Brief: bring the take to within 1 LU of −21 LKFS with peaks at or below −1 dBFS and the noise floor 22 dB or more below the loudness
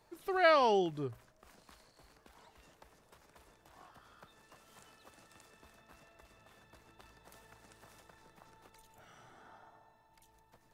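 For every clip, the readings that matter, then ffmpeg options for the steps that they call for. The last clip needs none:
integrated loudness −30.0 LKFS; sample peak −15.5 dBFS; target loudness −21.0 LKFS
→ -af "volume=9dB"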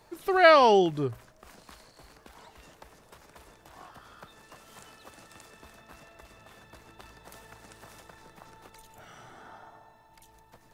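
integrated loudness −21.0 LKFS; sample peak −6.5 dBFS; background noise floor −59 dBFS

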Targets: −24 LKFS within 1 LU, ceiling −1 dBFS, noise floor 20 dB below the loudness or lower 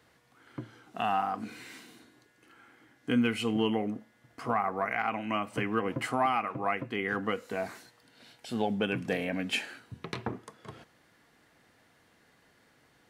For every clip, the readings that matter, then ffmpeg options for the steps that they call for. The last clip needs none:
integrated loudness −32.0 LKFS; sample peak −16.0 dBFS; target loudness −24.0 LKFS
→ -af "volume=8dB"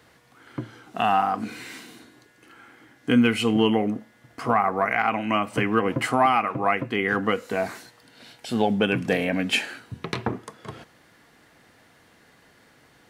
integrated loudness −24.0 LKFS; sample peak −8.0 dBFS; background noise floor −58 dBFS

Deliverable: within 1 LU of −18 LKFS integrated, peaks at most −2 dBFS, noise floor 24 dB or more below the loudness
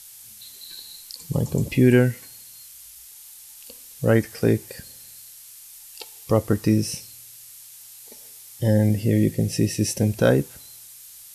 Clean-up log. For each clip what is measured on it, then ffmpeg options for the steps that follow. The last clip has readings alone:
background noise floor −45 dBFS; target noise floor −46 dBFS; integrated loudness −21.5 LKFS; sample peak −6.0 dBFS; target loudness −18.0 LKFS
→ -af "afftdn=noise_reduction=6:noise_floor=-45"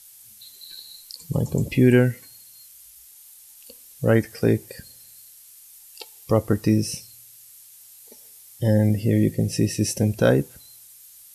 background noise floor −48 dBFS; integrated loudness −22.0 LKFS; sample peak −6.5 dBFS; target loudness −18.0 LKFS
→ -af "volume=4dB"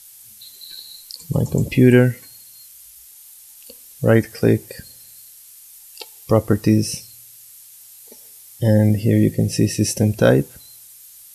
integrated loudness −18.0 LKFS; sample peak −2.5 dBFS; background noise floor −44 dBFS

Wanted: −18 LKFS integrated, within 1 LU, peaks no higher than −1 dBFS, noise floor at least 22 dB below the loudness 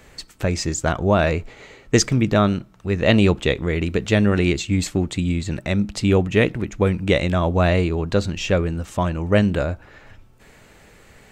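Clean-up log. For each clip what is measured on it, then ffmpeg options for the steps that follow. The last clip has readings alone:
integrated loudness −20.5 LKFS; sample peak −2.5 dBFS; target loudness −18.0 LKFS
→ -af "volume=2.5dB,alimiter=limit=-1dB:level=0:latency=1"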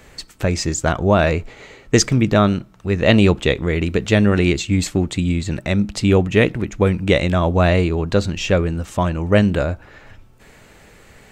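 integrated loudness −18.0 LKFS; sample peak −1.0 dBFS; background noise floor −47 dBFS

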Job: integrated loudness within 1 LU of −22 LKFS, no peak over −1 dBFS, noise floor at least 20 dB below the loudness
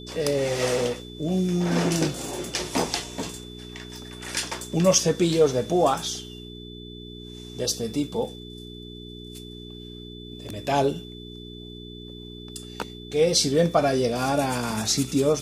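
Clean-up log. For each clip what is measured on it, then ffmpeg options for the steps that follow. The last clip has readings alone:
mains hum 60 Hz; hum harmonics up to 420 Hz; level of the hum −39 dBFS; interfering tone 3,500 Hz; level of the tone −44 dBFS; integrated loudness −24.5 LKFS; sample peak −6.0 dBFS; target loudness −22.0 LKFS
→ -af "bandreject=frequency=60:width_type=h:width=4,bandreject=frequency=120:width_type=h:width=4,bandreject=frequency=180:width_type=h:width=4,bandreject=frequency=240:width_type=h:width=4,bandreject=frequency=300:width_type=h:width=4,bandreject=frequency=360:width_type=h:width=4,bandreject=frequency=420:width_type=h:width=4"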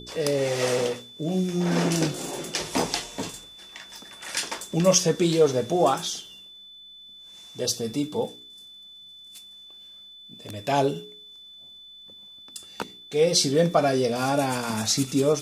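mains hum none found; interfering tone 3,500 Hz; level of the tone −44 dBFS
→ -af "bandreject=frequency=3500:width=30"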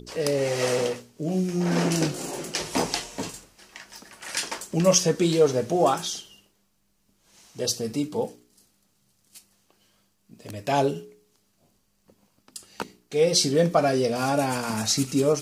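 interfering tone none found; integrated loudness −24.5 LKFS; sample peak −6.0 dBFS; target loudness −22.0 LKFS
→ -af "volume=2.5dB"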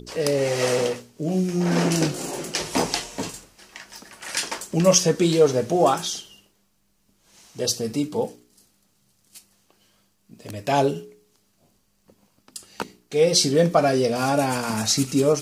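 integrated loudness −22.0 LKFS; sample peak −3.5 dBFS; background noise floor −66 dBFS

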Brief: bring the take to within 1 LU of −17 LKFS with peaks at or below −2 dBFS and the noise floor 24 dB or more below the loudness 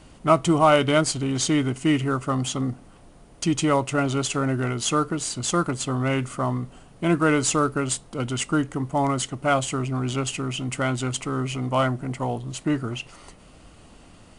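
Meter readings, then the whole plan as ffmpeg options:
integrated loudness −24.0 LKFS; sample peak −4.5 dBFS; target loudness −17.0 LKFS
→ -af "volume=7dB,alimiter=limit=-2dB:level=0:latency=1"

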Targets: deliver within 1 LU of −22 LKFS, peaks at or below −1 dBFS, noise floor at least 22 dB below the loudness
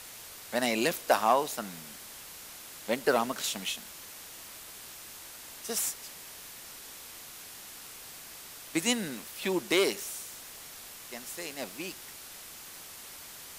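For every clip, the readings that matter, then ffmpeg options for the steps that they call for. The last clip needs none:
background noise floor −47 dBFS; target noise floor −56 dBFS; integrated loudness −33.5 LKFS; sample peak −10.5 dBFS; target loudness −22.0 LKFS
→ -af "afftdn=noise_reduction=9:noise_floor=-47"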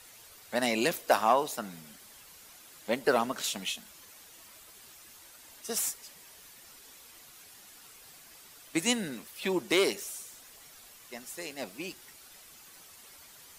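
background noise floor −54 dBFS; integrated loudness −31.0 LKFS; sample peak −10.5 dBFS; target loudness −22.0 LKFS
→ -af "volume=9dB"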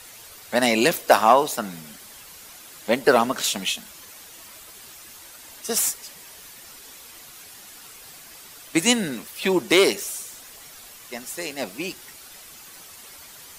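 integrated loudness −22.0 LKFS; sample peak −1.5 dBFS; background noise floor −45 dBFS

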